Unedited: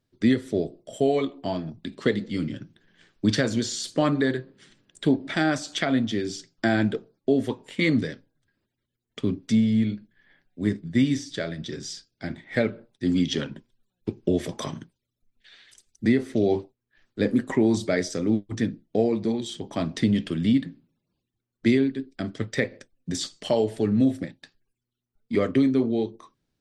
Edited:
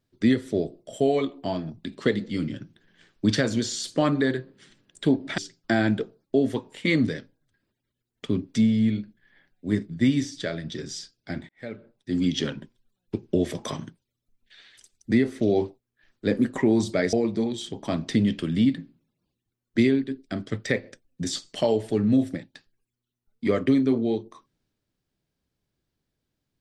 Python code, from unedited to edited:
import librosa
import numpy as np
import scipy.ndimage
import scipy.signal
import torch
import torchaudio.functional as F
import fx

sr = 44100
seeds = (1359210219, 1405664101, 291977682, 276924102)

y = fx.edit(x, sr, fx.cut(start_s=5.38, length_s=0.94),
    fx.fade_in_span(start_s=12.43, length_s=0.86),
    fx.cut(start_s=18.07, length_s=0.94), tone=tone)